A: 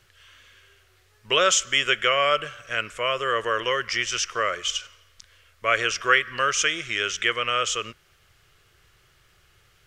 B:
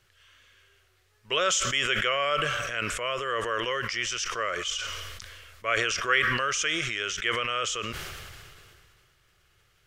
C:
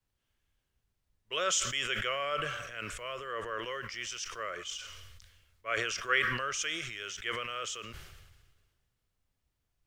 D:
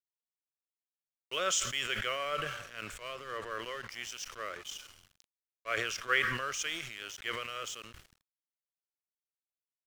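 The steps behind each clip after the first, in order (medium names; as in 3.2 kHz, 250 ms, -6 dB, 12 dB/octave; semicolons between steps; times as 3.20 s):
decay stretcher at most 25 dB/s; trim -6 dB
added noise pink -57 dBFS; three bands expanded up and down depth 70%; trim -8 dB
crossover distortion -47 dBFS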